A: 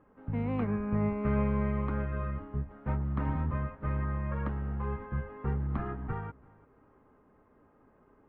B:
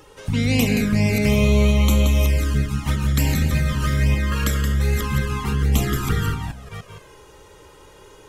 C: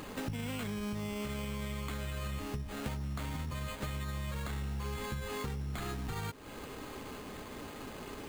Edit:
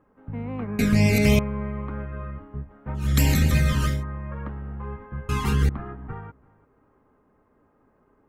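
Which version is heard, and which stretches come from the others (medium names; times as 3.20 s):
A
0.79–1.39 s: from B
3.06–3.92 s: from B, crossfade 0.24 s
5.29–5.69 s: from B
not used: C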